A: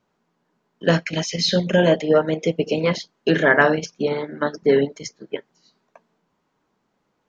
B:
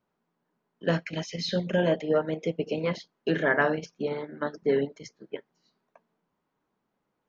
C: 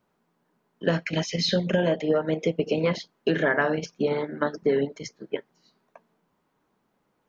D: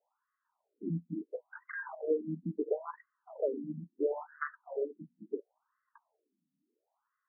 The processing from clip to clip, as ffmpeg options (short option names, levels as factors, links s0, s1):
-af "highshelf=f=6000:g=-11.5,volume=0.398"
-af "acompressor=threshold=0.0501:ratio=6,volume=2.24"
-af "afftfilt=real='re*between(b*sr/1024,210*pow(1500/210,0.5+0.5*sin(2*PI*0.73*pts/sr))/1.41,210*pow(1500/210,0.5+0.5*sin(2*PI*0.73*pts/sr))*1.41)':imag='im*between(b*sr/1024,210*pow(1500/210,0.5+0.5*sin(2*PI*0.73*pts/sr))/1.41,210*pow(1500/210,0.5+0.5*sin(2*PI*0.73*pts/sr))*1.41)':win_size=1024:overlap=0.75,volume=0.562"